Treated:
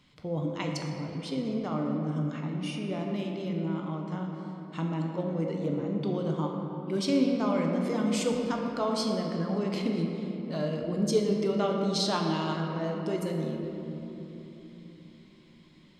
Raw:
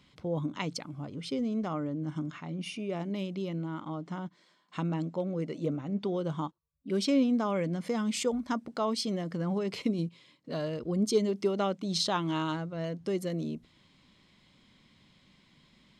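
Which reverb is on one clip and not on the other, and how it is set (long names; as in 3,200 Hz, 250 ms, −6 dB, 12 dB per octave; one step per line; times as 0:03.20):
rectangular room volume 220 cubic metres, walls hard, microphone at 0.45 metres
level −1 dB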